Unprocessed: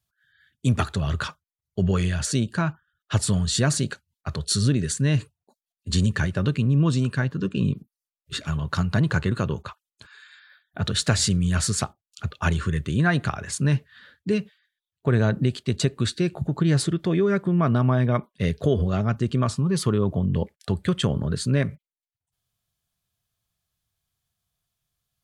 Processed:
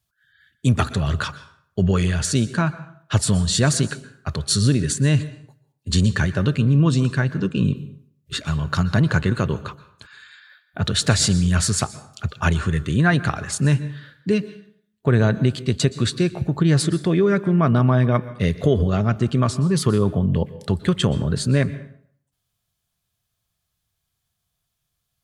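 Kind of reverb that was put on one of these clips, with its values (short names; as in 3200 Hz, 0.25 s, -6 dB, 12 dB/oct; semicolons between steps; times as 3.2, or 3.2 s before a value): plate-style reverb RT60 0.61 s, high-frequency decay 0.75×, pre-delay 0.11 s, DRR 15.5 dB; gain +3.5 dB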